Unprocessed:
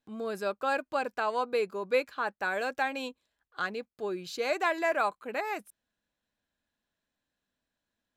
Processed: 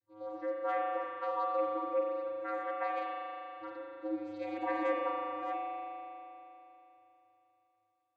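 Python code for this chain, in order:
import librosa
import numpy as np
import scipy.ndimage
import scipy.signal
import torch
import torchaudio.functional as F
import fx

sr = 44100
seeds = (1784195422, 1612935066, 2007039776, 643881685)

y = fx.hpss_only(x, sr, part='harmonic')
y = fx.vocoder(y, sr, bands=16, carrier='square', carrier_hz=106.0)
y = fx.rev_spring(y, sr, rt60_s=3.3, pass_ms=(39,), chirp_ms=55, drr_db=-3.5)
y = F.gain(torch.from_numpy(y), -4.5).numpy()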